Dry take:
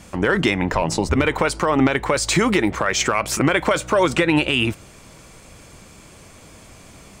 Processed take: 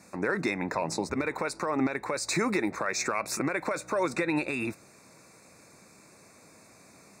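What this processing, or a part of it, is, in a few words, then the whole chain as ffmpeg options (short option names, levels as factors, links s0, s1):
PA system with an anti-feedback notch: -af "highpass=170,asuperstop=centerf=3100:order=12:qfactor=3.3,alimiter=limit=0.422:level=0:latency=1:release=239,volume=0.355"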